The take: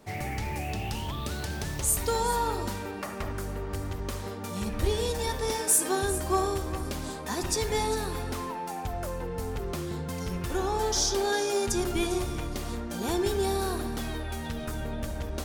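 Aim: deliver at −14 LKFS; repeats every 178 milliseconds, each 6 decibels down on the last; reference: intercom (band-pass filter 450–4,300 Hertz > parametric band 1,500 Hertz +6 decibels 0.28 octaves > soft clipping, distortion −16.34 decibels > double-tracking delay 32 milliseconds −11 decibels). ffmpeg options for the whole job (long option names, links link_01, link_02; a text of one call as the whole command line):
ffmpeg -i in.wav -filter_complex "[0:a]highpass=450,lowpass=4300,equalizer=frequency=1500:width_type=o:width=0.28:gain=6,aecho=1:1:178|356|534|712|890|1068:0.501|0.251|0.125|0.0626|0.0313|0.0157,asoftclip=threshold=-24.5dB,asplit=2[link_01][link_02];[link_02]adelay=32,volume=-11dB[link_03];[link_01][link_03]amix=inputs=2:normalize=0,volume=20dB" out.wav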